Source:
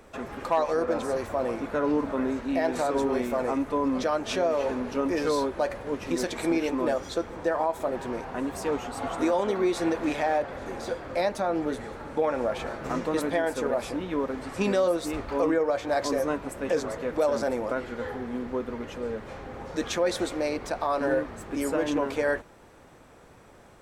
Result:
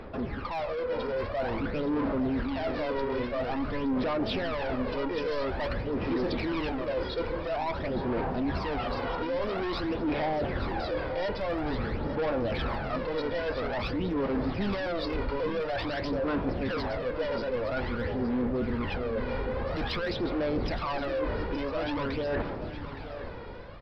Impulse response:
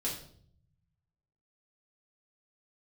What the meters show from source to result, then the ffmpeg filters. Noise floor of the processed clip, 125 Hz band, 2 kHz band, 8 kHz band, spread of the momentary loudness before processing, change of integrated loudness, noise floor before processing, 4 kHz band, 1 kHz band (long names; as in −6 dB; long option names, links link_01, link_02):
−37 dBFS, +6.0 dB, −1.0 dB, below −20 dB, 8 LU, −3.0 dB, −52 dBFS, +0.5 dB, −3.5 dB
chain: -af "aresample=11025,asoftclip=type=tanh:threshold=-31.5dB,aresample=44100,dynaudnorm=framelen=360:gausssize=5:maxgain=8.5dB,aphaser=in_gain=1:out_gain=1:delay=2.1:decay=0.6:speed=0.49:type=sinusoidal,areverse,acompressor=threshold=-30dB:ratio=6,areverse,lowshelf=frequency=270:gain=4.5,aecho=1:1:868:0.251"